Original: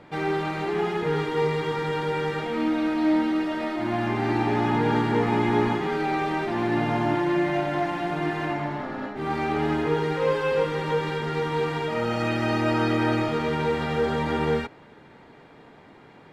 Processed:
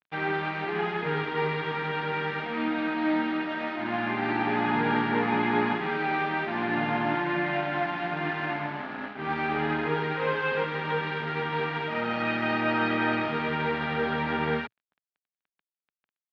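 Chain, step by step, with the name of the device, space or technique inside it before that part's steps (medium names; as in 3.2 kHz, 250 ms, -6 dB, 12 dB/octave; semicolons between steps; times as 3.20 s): blown loudspeaker (crossover distortion -40 dBFS; cabinet simulation 120–3800 Hz, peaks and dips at 120 Hz -7 dB, 340 Hz -6 dB, 510 Hz -6 dB, 1.6 kHz +5 dB, 2.4 kHz +3 dB)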